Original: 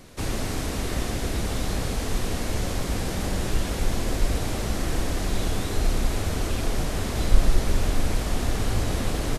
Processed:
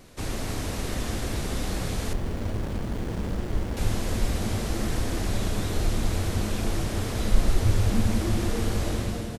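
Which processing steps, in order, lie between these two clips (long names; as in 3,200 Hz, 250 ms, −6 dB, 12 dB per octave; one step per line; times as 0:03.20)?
fade-out on the ending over 0.51 s
tape wow and flutter 26 cents
echo with shifted repeats 294 ms, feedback 55%, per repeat −120 Hz, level −7 dB
0:02.13–0:03.77: windowed peak hold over 33 samples
level −3 dB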